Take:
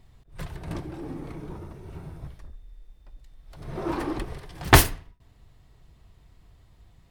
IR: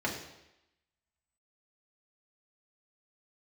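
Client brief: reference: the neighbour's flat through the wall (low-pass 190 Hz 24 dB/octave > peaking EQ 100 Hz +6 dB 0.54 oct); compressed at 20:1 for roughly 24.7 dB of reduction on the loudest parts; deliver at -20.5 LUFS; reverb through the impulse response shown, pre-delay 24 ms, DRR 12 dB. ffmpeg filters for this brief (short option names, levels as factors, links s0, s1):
-filter_complex "[0:a]acompressor=threshold=0.0224:ratio=20,asplit=2[s0][s1];[1:a]atrim=start_sample=2205,adelay=24[s2];[s1][s2]afir=irnorm=-1:irlink=0,volume=0.106[s3];[s0][s3]amix=inputs=2:normalize=0,lowpass=f=190:w=0.5412,lowpass=f=190:w=1.3066,equalizer=f=100:t=o:w=0.54:g=6,volume=12.6"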